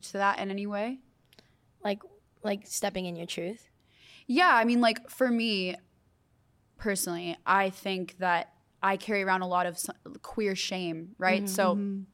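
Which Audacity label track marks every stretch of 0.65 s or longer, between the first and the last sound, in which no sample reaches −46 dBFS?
5.780000	6.790000	silence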